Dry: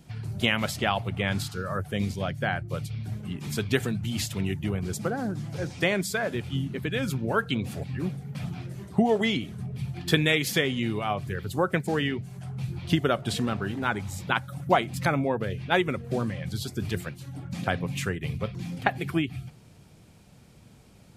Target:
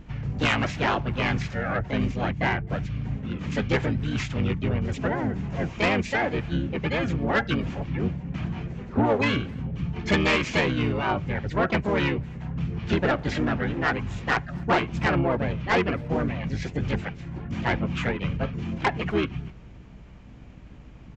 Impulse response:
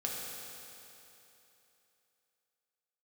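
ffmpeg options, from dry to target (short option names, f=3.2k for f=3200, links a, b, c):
-filter_complex "[0:a]aeval=exprs='val(0)+0.00316*(sin(2*PI*50*n/s)+sin(2*PI*2*50*n/s)/2+sin(2*PI*3*50*n/s)/3+sin(2*PI*4*50*n/s)/4+sin(2*PI*5*50*n/s)/5)':c=same,asplit=4[a][b][c][d];[b]asetrate=22050,aresample=44100,atempo=2,volume=-3dB[e];[c]asetrate=55563,aresample=44100,atempo=0.793701,volume=0dB[f];[d]asetrate=88200,aresample=44100,atempo=0.5,volume=-15dB[g];[a][e][f][g]amix=inputs=4:normalize=0,highshelf=f=3.3k:t=q:w=1.5:g=-8.5,aresample=16000,asoftclip=type=tanh:threshold=-15dB,aresample=44100,asplit=2[h][i];[i]adelay=260,highpass=300,lowpass=3.4k,asoftclip=type=hard:threshold=-22.5dB,volume=-26dB[j];[h][j]amix=inputs=2:normalize=0"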